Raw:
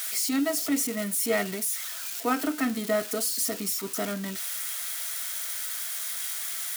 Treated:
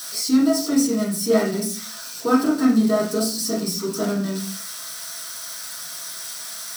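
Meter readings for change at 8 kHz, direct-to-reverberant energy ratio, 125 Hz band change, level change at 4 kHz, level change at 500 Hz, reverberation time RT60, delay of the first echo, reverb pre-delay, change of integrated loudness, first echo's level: +1.5 dB, -7.0 dB, +10.5 dB, +5.0 dB, +7.5 dB, 0.45 s, no echo, 3 ms, +5.5 dB, no echo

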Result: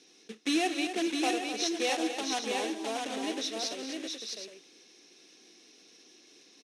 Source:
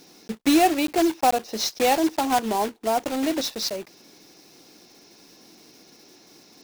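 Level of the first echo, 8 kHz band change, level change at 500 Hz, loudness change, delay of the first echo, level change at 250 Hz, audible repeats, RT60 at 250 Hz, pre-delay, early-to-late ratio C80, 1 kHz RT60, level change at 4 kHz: -19.5 dB, -5.5 dB, -9.0 dB, -9.0 dB, 55 ms, -9.0 dB, 5, no reverb, no reverb, no reverb, no reverb, -3.5 dB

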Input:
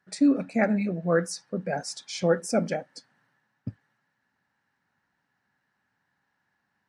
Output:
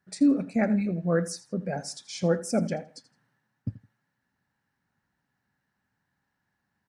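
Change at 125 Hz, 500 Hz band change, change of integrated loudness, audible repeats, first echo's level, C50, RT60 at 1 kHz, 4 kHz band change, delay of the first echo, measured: +2.0 dB, -2.5 dB, -1.0 dB, 2, -17.0 dB, no reverb, no reverb, -2.5 dB, 82 ms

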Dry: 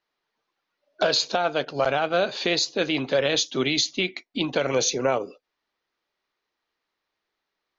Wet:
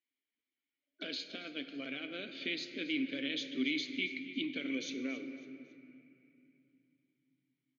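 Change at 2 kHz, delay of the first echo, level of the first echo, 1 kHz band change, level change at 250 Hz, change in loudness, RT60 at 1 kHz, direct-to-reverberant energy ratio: -10.5 dB, 276 ms, -16.5 dB, -30.5 dB, -7.5 dB, -14.0 dB, 2.5 s, 7.5 dB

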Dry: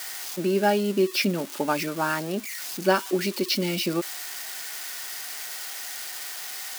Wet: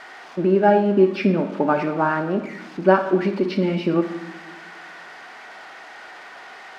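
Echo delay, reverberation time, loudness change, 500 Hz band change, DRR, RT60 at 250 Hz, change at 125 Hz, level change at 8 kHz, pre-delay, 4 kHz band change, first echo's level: no echo, 1.1 s, +7.0 dB, +6.5 dB, 7.0 dB, 1.9 s, +7.0 dB, under -20 dB, 32 ms, -9.5 dB, no echo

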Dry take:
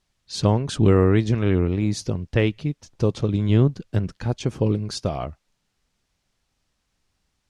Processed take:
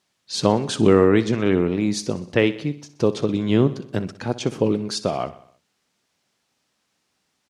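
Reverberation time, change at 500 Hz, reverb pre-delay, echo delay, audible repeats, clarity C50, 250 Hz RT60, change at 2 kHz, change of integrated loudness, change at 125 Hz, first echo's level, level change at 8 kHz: no reverb, +4.0 dB, no reverb, 62 ms, 4, no reverb, no reverb, +4.0 dB, +1.0 dB, -5.5 dB, -16.0 dB, +4.0 dB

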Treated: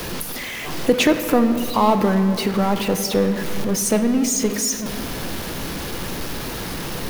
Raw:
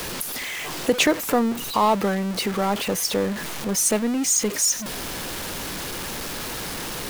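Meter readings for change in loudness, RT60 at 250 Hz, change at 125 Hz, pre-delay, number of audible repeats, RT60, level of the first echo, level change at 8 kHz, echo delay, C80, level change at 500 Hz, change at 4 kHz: +2.5 dB, 3.4 s, +7.0 dB, 6 ms, no echo, 2.7 s, no echo, -2.0 dB, no echo, 10.0 dB, +4.0 dB, 0.0 dB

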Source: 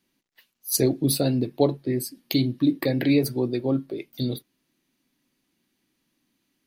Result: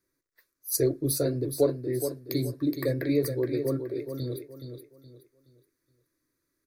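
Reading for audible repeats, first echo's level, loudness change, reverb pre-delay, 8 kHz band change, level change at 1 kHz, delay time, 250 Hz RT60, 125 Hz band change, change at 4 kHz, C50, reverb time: 3, -8.0 dB, -4.5 dB, no reverb, -3.5 dB, -9.5 dB, 421 ms, no reverb, -4.0 dB, -9.0 dB, no reverb, no reverb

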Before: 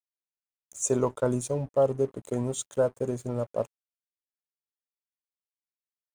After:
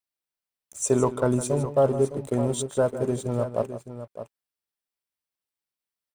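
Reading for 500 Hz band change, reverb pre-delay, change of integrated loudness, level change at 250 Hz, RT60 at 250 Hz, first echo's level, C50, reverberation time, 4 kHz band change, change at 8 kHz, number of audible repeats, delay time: +3.0 dB, no reverb, +3.5 dB, +5.0 dB, no reverb, -13.0 dB, no reverb, no reverb, +5.0 dB, +1.5 dB, 2, 158 ms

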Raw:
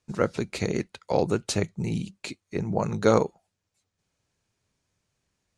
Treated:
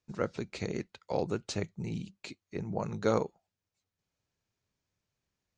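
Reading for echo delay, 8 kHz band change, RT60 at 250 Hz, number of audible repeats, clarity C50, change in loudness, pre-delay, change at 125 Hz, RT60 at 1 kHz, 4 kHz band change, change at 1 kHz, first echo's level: no echo, -10.0 dB, no reverb, no echo, no reverb, -8.0 dB, no reverb, -8.0 dB, no reverb, -8.0 dB, -8.0 dB, no echo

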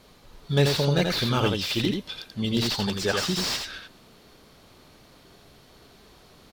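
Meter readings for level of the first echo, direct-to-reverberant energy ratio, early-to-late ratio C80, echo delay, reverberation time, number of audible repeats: -4.5 dB, no reverb, no reverb, 85 ms, no reverb, 1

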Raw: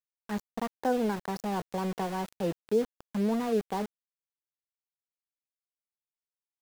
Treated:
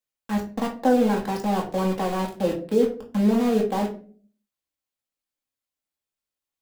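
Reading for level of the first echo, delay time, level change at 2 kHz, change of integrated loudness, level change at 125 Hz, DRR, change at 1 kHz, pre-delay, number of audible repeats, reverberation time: no echo, no echo, +6.0 dB, +8.0 dB, +8.0 dB, -1.5 dB, +6.5 dB, 4 ms, no echo, 0.45 s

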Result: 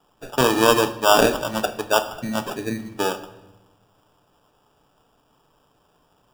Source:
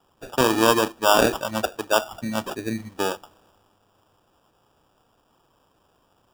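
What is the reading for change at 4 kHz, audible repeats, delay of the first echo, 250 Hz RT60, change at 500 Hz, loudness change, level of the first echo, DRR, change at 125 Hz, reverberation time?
+2.0 dB, no echo, no echo, 1.6 s, +2.0 dB, +2.0 dB, no echo, 8.0 dB, +2.0 dB, 0.95 s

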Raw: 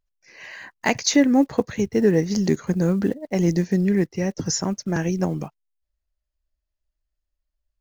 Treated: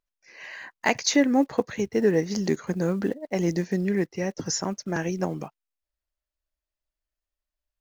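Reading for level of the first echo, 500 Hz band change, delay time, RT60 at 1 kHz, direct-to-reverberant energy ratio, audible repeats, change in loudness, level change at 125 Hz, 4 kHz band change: no echo, -2.5 dB, no echo, no reverb, no reverb, no echo, -4.0 dB, -6.5 dB, -2.5 dB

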